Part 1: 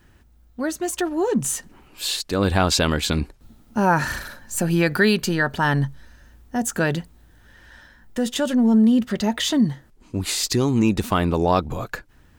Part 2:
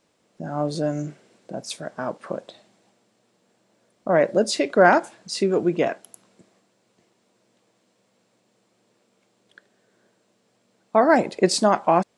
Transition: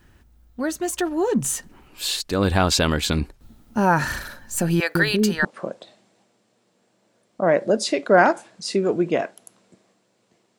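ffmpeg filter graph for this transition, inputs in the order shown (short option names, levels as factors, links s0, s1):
-filter_complex "[0:a]asettb=1/sr,asplit=3[s0][s1][s2];[s0]atrim=end=4.804[s3];[s1]atrim=start=4.8:end=5.45,asetpts=PTS-STARTPTS,afade=t=in:d=0.004:c=qsin,afade=t=out:st=0.646:d=0.004:c=qsin,acrossover=split=490[s4][s5];[s4]adelay=150[s6];[s6][s5]amix=inputs=2:normalize=0,atrim=end_sample=28665[s7];[s2]atrim=start=5.446[s8];[s3][s7]acrossfade=d=0.004:c1=hsin:c2=qsin[s9];[s9][s8]acrossfade=d=0.004:c1=qsin:c2=hsin,apad=whole_dur=10.58,atrim=end=10.58,atrim=end=5.452[s10];[1:a]atrim=start=2.118:end=7.25[s11];[s10][s11]acrossfade=d=0.004:c1=hsin:c2=hsin"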